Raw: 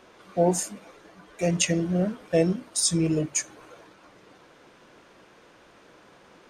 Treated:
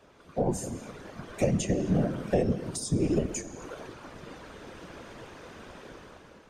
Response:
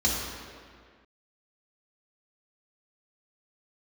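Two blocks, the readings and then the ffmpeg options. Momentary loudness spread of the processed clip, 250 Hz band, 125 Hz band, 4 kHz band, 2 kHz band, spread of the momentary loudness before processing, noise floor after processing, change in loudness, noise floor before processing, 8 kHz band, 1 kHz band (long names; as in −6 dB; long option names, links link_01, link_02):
19 LU, −2.5 dB, −1.5 dB, −11.0 dB, −6.0 dB, 6 LU, −54 dBFS, −4.5 dB, −55 dBFS, −10.5 dB, −3.5 dB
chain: -filter_complex "[0:a]asplit=2[link_01][link_02];[1:a]atrim=start_sample=2205,afade=type=out:start_time=0.32:duration=0.01,atrim=end_sample=14553[link_03];[link_02][link_03]afir=irnorm=-1:irlink=0,volume=-24dB[link_04];[link_01][link_04]amix=inputs=2:normalize=0,afftfilt=real='hypot(re,im)*cos(2*PI*random(0))':imag='hypot(re,im)*sin(2*PI*random(1))':win_size=512:overlap=0.75,dynaudnorm=framelen=240:gausssize=7:maxgain=13dB,lowshelf=frequency=140:gain=9.5,acrossover=split=190|710[link_05][link_06][link_07];[link_05]acompressor=threshold=-33dB:ratio=4[link_08];[link_06]acompressor=threshold=-27dB:ratio=4[link_09];[link_07]acompressor=threshold=-38dB:ratio=4[link_10];[link_08][link_09][link_10]amix=inputs=3:normalize=0"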